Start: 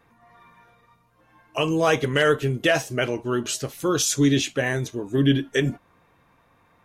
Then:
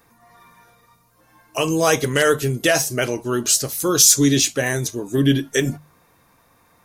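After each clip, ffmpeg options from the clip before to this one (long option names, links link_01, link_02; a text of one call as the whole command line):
ffmpeg -i in.wav -af "aexciter=amount=2.5:drive=8.1:freq=4300,bandreject=frequency=50:width_type=h:width=6,bandreject=frequency=100:width_type=h:width=6,bandreject=frequency=150:width_type=h:width=6,volume=2.5dB" out.wav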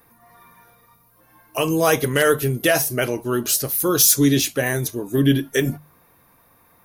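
ffmpeg -i in.wav -af "highshelf=frequency=6400:gain=-11,aexciter=amount=5.1:drive=7.6:freq=10000" out.wav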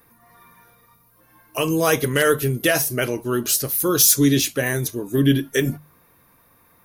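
ffmpeg -i in.wav -af "equalizer=frequency=750:width=2.2:gain=-4" out.wav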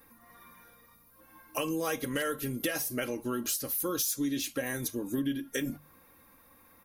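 ffmpeg -i in.wav -af "aecho=1:1:3.7:0.54,acompressor=threshold=-26dB:ratio=5,volume=-4dB" out.wav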